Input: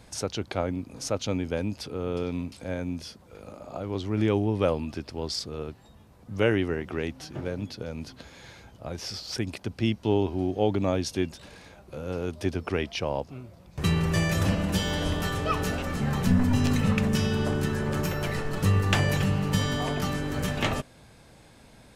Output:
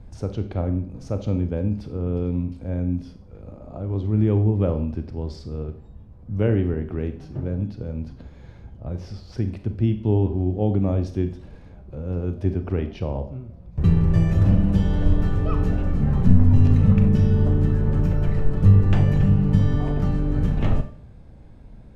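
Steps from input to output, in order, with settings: tilt -4.5 dB/oct; Schroeder reverb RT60 0.48 s, combs from 30 ms, DRR 8 dB; gain -5.5 dB

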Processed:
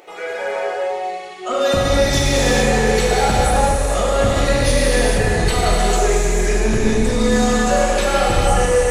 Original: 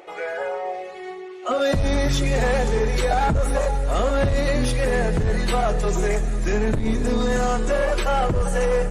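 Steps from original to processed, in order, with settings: high shelf 3100 Hz +8 dB; non-linear reverb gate 0.48 s flat, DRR -5.5 dB; gain -2 dB

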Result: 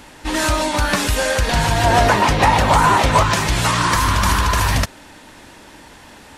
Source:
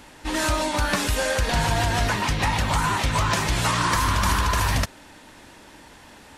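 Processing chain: 1.84–3.23 bell 600 Hz +9 dB 2.1 oct; gain +5 dB

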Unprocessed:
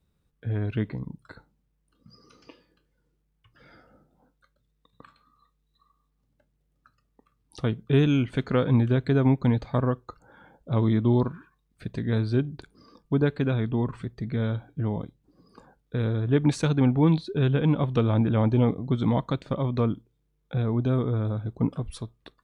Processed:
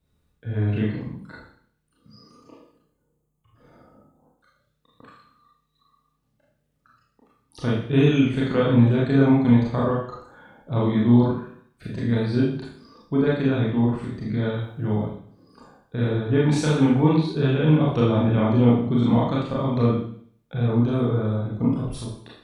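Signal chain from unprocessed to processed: 2.28–4.38 spectral gain 1300–6200 Hz -12 dB; 14.54–15.01 high shelf 4100 Hz +7.5 dB; Schroeder reverb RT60 0.58 s, combs from 26 ms, DRR -5.5 dB; gain -2 dB

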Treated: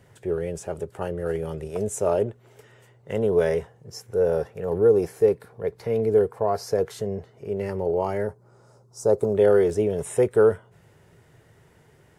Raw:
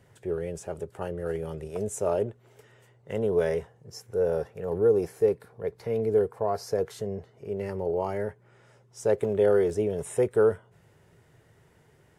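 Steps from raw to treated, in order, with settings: 8.27–9.36 band shelf 2400 Hz -16 dB 1.3 oct; gain +4 dB

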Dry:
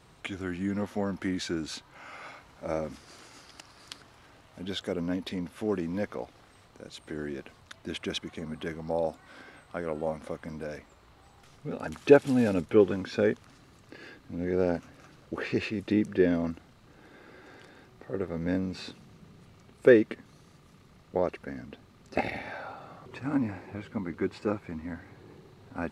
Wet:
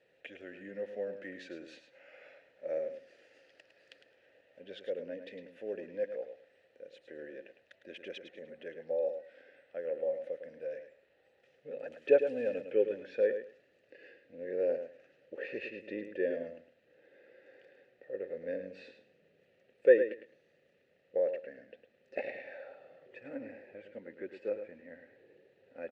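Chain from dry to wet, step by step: vowel filter e; feedback echo 0.106 s, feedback 18%, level -9 dB; gain +2 dB

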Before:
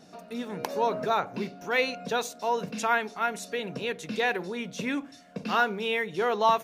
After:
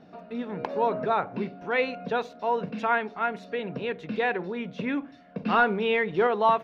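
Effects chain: 5.46–6.27 sample leveller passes 1; air absorption 350 m; gain +2.5 dB

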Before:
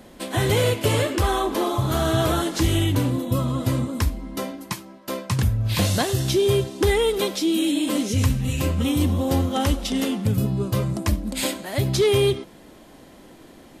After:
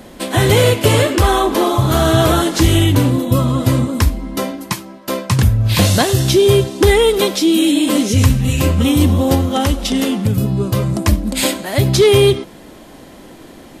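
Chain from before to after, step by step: 9.34–10.93 compressor 2:1, threshold -22 dBFS, peak gain reduction 4 dB; gain +8.5 dB

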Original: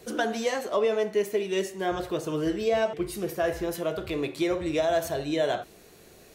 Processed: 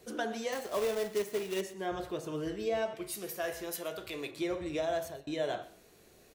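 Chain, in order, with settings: de-hum 162.7 Hz, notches 30; 0.52–1.61 companded quantiser 4-bit; 2.95–4.31 tilt +2.5 dB/oct; 4.87–5.27 fade out equal-power; echo 0.123 s -18.5 dB; gain -7.5 dB

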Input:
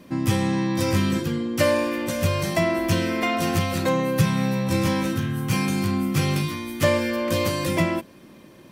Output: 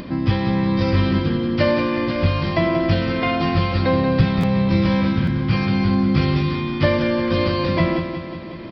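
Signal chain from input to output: low shelf 99 Hz +6.5 dB; notch 2700 Hz, Q 26; in parallel at -1 dB: compressor, threshold -34 dBFS, peak gain reduction 20.5 dB; on the sum: downsampling 11025 Hz; harmoniser -12 st -12 dB; on a send: feedback echo 0.183 s, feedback 56%, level -8 dB; on the sum: upward compressor, threshold -26 dBFS; stuck buffer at 4.4/5.24, samples 512, times 2

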